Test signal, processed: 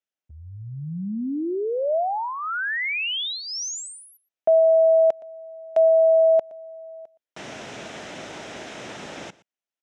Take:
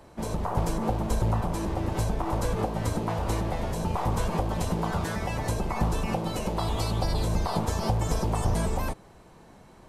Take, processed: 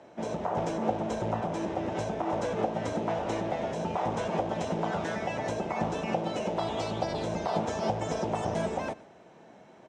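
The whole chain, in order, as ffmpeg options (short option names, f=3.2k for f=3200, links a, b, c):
-af "highpass=200,equalizer=f=640:t=q:w=4:g=5,equalizer=f=1.1k:t=q:w=4:g=-6,equalizer=f=4.5k:t=q:w=4:g=-10,lowpass=f=6.2k:w=0.5412,lowpass=f=6.2k:w=1.3066,aecho=1:1:118:0.0944"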